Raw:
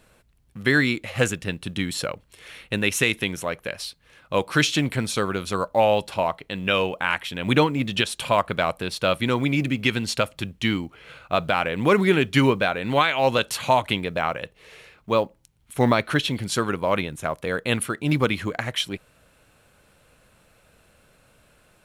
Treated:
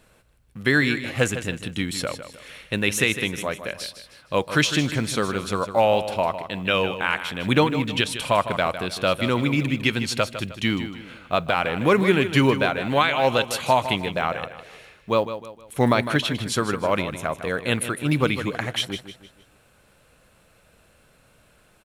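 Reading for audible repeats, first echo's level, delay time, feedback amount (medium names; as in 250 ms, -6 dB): 3, -11.0 dB, 155 ms, 38%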